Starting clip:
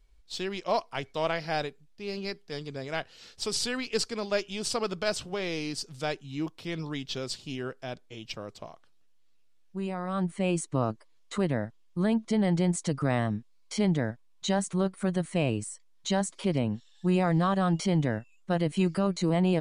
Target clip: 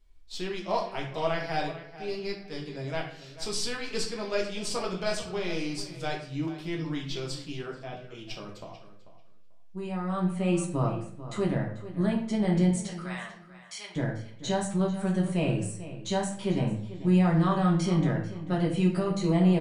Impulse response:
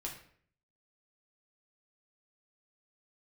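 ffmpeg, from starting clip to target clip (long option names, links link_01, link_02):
-filter_complex "[0:a]asettb=1/sr,asplit=3[link_01][link_02][link_03];[link_01]atrim=end=12.694[link_04];[link_02]atrim=start=12.69:end=13.96,asetpts=PTS-STARTPTS,afade=type=in:duration=0.004:curve=qsin,afade=type=out:start_time=1.266:duration=0.004:curve=qsin,highpass=1400[link_05];[link_03]atrim=start=13.956[link_06];[link_04][link_05]acrossfade=duration=0.004:curve1=hsin:curve2=qsin[link_07];[link_07][link_06]acrossfade=duration=0.004:curve1=qsin:curve2=hsin,asplit=2[link_08][link_09];[link_09]adelay=441,lowpass=frequency=4400:poles=1,volume=-14dB,asplit=2[link_10][link_11];[link_11]adelay=441,lowpass=frequency=4400:poles=1,volume=0.18[link_12];[link_08][link_10][link_12]amix=inputs=3:normalize=0[link_13];[1:a]atrim=start_sample=2205[link_14];[link_13][link_14]afir=irnorm=-1:irlink=0,asettb=1/sr,asplit=3[link_15][link_16][link_17];[link_15]atrim=end=7.664[link_18];[link_16]atrim=start=7.66:end=8.15,asetpts=PTS-STARTPTS,afade=type=in:duration=0.004:curve=qsin,afade=type=out:start_time=0.486:duration=0.004:curve=qsin,acrossover=split=2900[link_19][link_20];[link_20]acompressor=threshold=-59dB:ratio=4:attack=1:release=60[link_21];[link_19][link_21]amix=inputs=2:normalize=0[link_22];[link_17]atrim=start=8.146[link_23];[link_18][link_22]acrossfade=duration=0.004:curve1=hsin:curve2=qsin[link_24];[link_24][link_23]acrossfade=duration=0.004:curve1=qsin:curve2=hsin"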